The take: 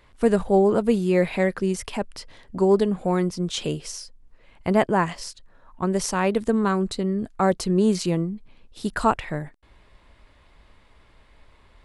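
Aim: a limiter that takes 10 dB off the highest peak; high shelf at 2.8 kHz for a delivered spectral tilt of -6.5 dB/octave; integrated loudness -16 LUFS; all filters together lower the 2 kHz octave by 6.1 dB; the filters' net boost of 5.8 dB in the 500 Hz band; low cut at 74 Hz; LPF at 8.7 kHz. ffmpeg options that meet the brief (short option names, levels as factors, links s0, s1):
-af "highpass=74,lowpass=8700,equalizer=f=500:t=o:g=8,equalizer=f=2000:t=o:g=-7.5,highshelf=f=2800:g=-3,volume=2.37,alimiter=limit=0.531:level=0:latency=1"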